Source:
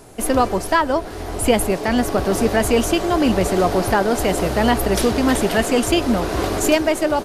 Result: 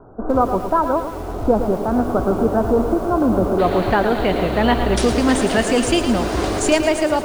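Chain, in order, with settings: steep low-pass 1.5 kHz 96 dB/octave, from 3.58 s 4.4 kHz, from 4.96 s 10 kHz; bit-crushed delay 111 ms, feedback 55%, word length 6-bit, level -9 dB

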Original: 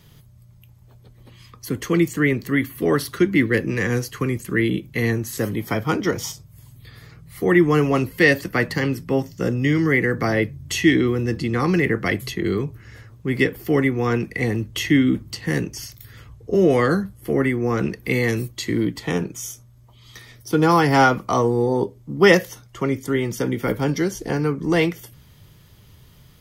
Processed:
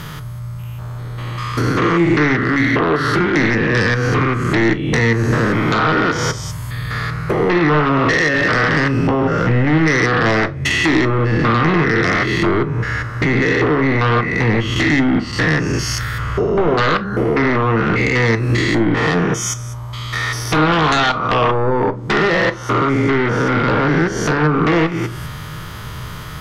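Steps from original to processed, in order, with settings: spectrogram pixelated in time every 200 ms; peaking EQ 1.3 kHz +13.5 dB 1.2 oct; compression 3:1, threshold -33 dBFS, peak gain reduction 19.5 dB; low-pass that closes with the level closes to 2.7 kHz, closed at -27.5 dBFS; sine folder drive 12 dB, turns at -15 dBFS; reverberation, pre-delay 6 ms, DRR 9.5 dB; trim +3.5 dB

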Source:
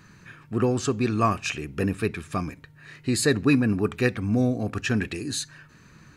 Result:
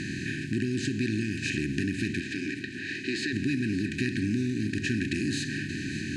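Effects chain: spectral levelling over time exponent 0.4; 2.20–3.33 s: three-band isolator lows -21 dB, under 280 Hz, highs -13 dB, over 5.9 kHz; compression, threshold -20 dBFS, peak gain reduction 8.5 dB; brick-wall FIR band-stop 390–1500 Hz; distance through air 75 m; shuffle delay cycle 964 ms, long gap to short 1.5:1, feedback 52%, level -14 dB; trim -3.5 dB

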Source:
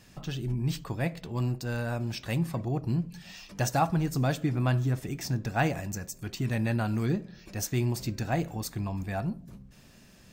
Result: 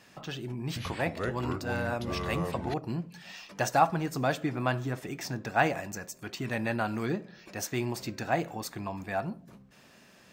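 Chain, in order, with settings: high-pass 660 Hz 6 dB/octave; treble shelf 3.1 kHz -10.5 dB; 0.67–2.74 s: ever faster or slower copies 90 ms, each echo -5 st, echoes 2; trim +6.5 dB

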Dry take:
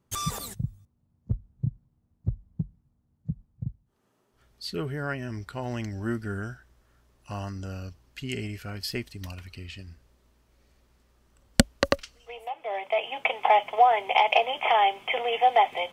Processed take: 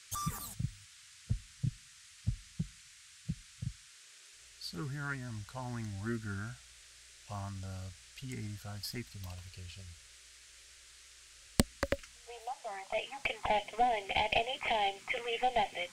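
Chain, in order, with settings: single-diode clipper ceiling -16 dBFS; touch-sensitive phaser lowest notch 210 Hz, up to 1.3 kHz, full sweep at -22.5 dBFS; band noise 1.4–9 kHz -53 dBFS; trim -4.5 dB

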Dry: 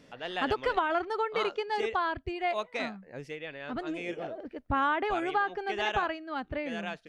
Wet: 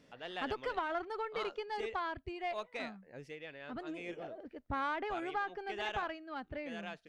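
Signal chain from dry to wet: single-diode clipper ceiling -20 dBFS; trim -7 dB

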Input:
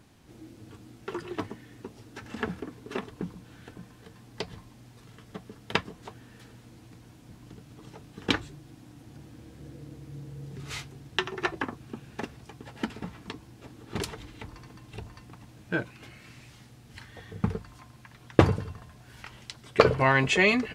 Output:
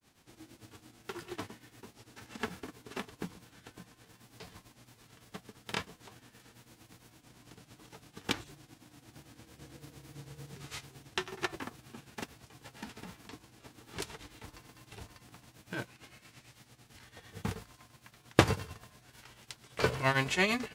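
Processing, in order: formants flattened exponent 0.6; granulator 164 ms, grains 8.9 per s, spray 16 ms, pitch spread up and down by 0 st; trim -4.5 dB

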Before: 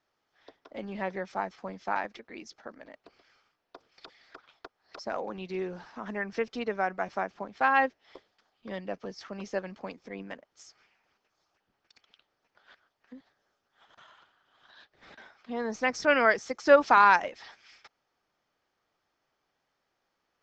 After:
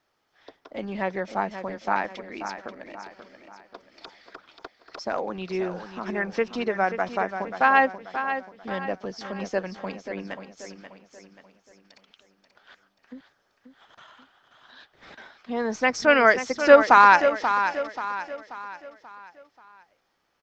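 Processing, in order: feedback delay 534 ms, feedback 43%, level -9.5 dB; trim +5.5 dB

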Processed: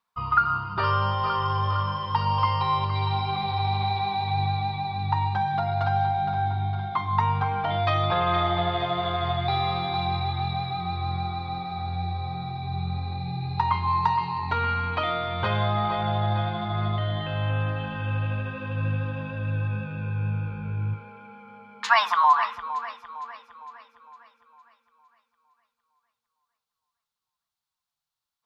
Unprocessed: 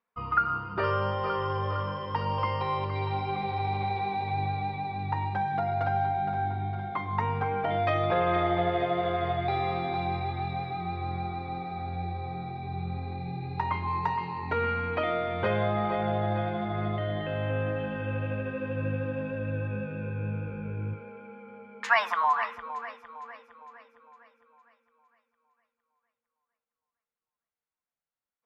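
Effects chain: graphic EQ 125/250/500/1000/2000/4000 Hz +4/-6/-10/+6/-6/+9 dB; trim +4 dB

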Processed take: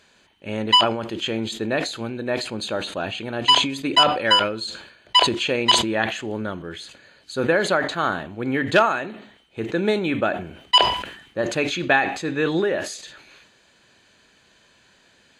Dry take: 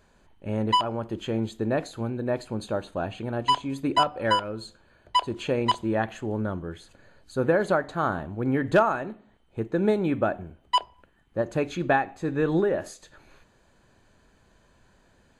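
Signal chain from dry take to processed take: frequency weighting D; decay stretcher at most 79 dB/s; trim +2 dB

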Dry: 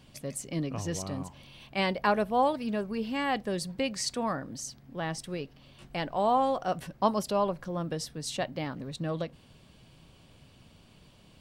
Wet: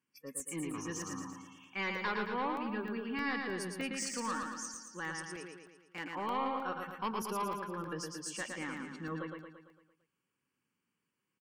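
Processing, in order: high-pass 310 Hz 12 dB/octave; static phaser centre 1.6 kHz, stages 4; saturation -32 dBFS, distortion -11 dB; spectral noise reduction 23 dB; 5.25–6.04 s: power-law waveshaper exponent 1.4; on a send: feedback delay 113 ms, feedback 54%, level -4 dB; on the sum: crackling interface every 0.31 s, samples 64, zero, from 0.40 s; trim +1.5 dB

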